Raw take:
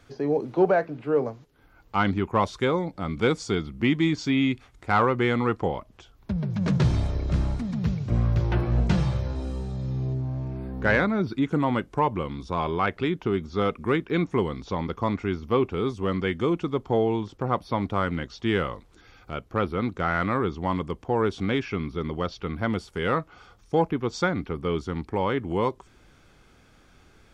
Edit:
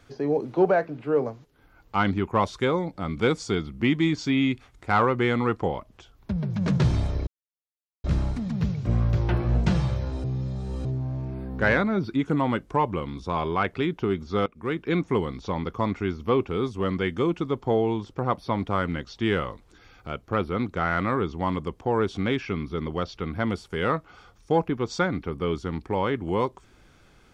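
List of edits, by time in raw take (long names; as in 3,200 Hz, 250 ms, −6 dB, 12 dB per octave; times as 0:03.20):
0:07.27: splice in silence 0.77 s
0:09.47–0:10.08: reverse
0:13.69–0:14.13: fade in, from −19.5 dB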